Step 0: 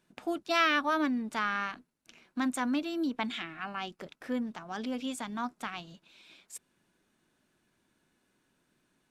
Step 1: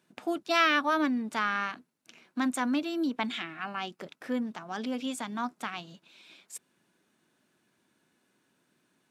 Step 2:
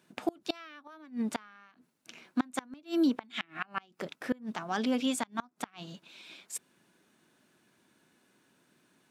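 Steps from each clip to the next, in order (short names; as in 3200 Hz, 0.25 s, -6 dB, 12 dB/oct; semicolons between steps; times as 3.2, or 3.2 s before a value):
HPF 130 Hz 12 dB/oct; gain +2 dB
flipped gate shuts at -22 dBFS, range -29 dB; gain +4 dB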